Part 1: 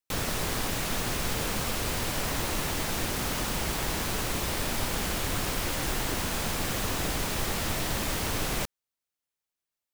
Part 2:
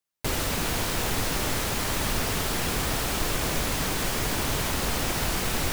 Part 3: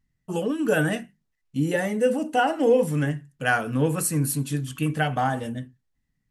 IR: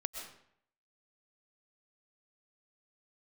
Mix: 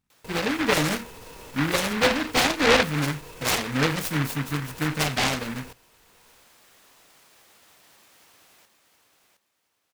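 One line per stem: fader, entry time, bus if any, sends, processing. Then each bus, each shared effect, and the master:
-19.0 dB, 0.00 s, no send, echo send -6 dB, high-pass 780 Hz 6 dB/octave; peak limiter -29 dBFS, peak gain reduction 8.5 dB; auto duck -14 dB, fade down 0.70 s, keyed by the third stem
-9.5 dB, 0.00 s, no send, echo send -20 dB, peak limiter -27 dBFS, peak gain reduction 13.5 dB; small resonant body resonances 470/950/2600 Hz, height 12 dB
+0.5 dB, 0.00 s, no send, no echo send, self-modulated delay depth 0.13 ms; comb of notches 1.4 kHz; delay time shaken by noise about 1.5 kHz, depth 0.31 ms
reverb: none
echo: feedback delay 715 ms, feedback 26%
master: none

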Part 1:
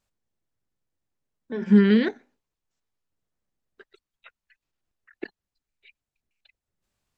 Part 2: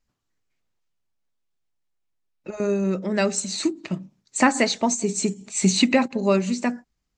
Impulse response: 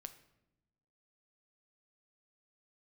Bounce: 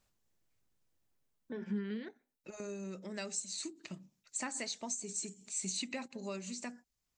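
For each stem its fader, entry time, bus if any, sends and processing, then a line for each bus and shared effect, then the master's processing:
+2.0 dB, 0.00 s, no send, auto duck -23 dB, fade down 1.30 s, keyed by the second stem
-0.5 dB, 0.00 s, no send, pre-emphasis filter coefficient 0.8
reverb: none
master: compression 2:1, threshold -44 dBFS, peak gain reduction 13.5 dB

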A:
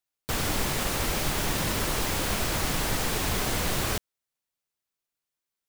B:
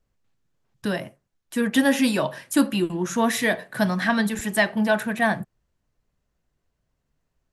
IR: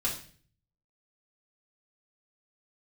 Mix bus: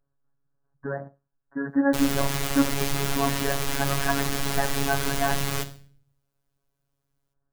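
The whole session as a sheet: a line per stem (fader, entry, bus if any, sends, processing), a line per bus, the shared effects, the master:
-0.5 dB, 1.65 s, send -9 dB, peak limiter -18.5 dBFS, peak gain reduction 4 dB
-1.5 dB, 0.00 s, no send, steep low-pass 1.7 kHz 96 dB/octave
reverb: on, RT60 0.45 s, pre-delay 3 ms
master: robot voice 139 Hz

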